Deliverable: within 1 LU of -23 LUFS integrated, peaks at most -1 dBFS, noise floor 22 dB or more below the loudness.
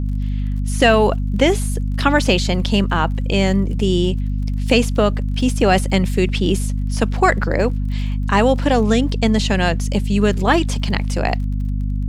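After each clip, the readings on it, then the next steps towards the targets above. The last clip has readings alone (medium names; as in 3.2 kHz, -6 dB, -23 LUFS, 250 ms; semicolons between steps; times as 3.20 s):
tick rate 33 per s; hum 50 Hz; highest harmonic 250 Hz; hum level -18 dBFS; loudness -18.0 LUFS; peak level -1.0 dBFS; loudness target -23.0 LUFS
-> de-click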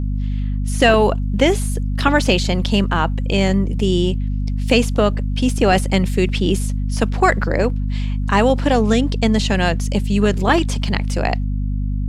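tick rate 0.17 per s; hum 50 Hz; highest harmonic 250 Hz; hum level -18 dBFS
-> hum notches 50/100/150/200/250 Hz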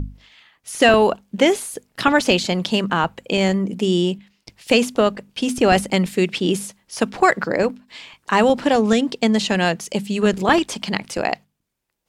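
hum not found; loudness -19.0 LUFS; peak level -2.0 dBFS; loudness target -23.0 LUFS
-> trim -4 dB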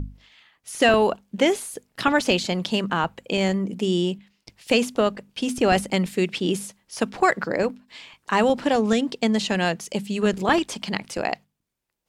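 loudness -23.0 LUFS; peak level -6.0 dBFS; noise floor -77 dBFS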